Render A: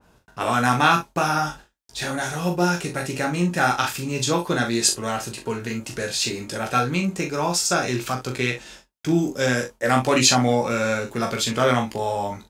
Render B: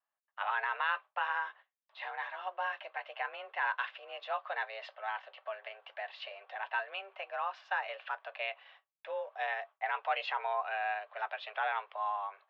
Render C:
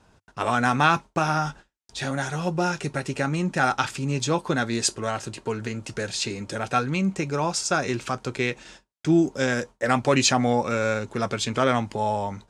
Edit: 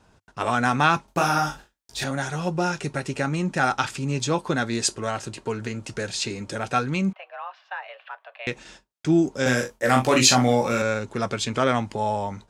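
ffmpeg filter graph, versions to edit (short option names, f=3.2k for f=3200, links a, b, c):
-filter_complex "[0:a]asplit=2[a][b];[2:a]asplit=4[c][d][e][f];[c]atrim=end=1.082[g];[a]atrim=start=1.078:end=2.042[h];[d]atrim=start=2.038:end=7.132[i];[1:a]atrim=start=7.128:end=8.472[j];[e]atrim=start=8.468:end=9.462[k];[b]atrim=start=9.458:end=10.822[l];[f]atrim=start=10.818[m];[g][h]acrossfade=d=0.004:c1=hsin:c2=hsin[n];[n][i]acrossfade=d=0.004:c1=hsin:c2=hsin[o];[o][j]acrossfade=d=0.004:c1=hsin:c2=hsin[p];[p][k]acrossfade=d=0.004:c1=hsin:c2=hsin[q];[q][l]acrossfade=d=0.004:c1=hsin:c2=hsin[r];[r][m]acrossfade=d=0.004:c1=hsin:c2=hsin"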